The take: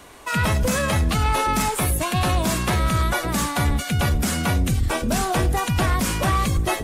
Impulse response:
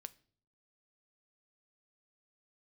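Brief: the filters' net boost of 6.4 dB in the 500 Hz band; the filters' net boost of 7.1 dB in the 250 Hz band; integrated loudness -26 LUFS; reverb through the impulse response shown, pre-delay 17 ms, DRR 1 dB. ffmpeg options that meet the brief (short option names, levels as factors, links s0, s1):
-filter_complex "[0:a]equalizer=f=250:t=o:g=8,equalizer=f=500:t=o:g=6,asplit=2[s0][s1];[1:a]atrim=start_sample=2205,adelay=17[s2];[s1][s2]afir=irnorm=-1:irlink=0,volume=1.68[s3];[s0][s3]amix=inputs=2:normalize=0,volume=0.316"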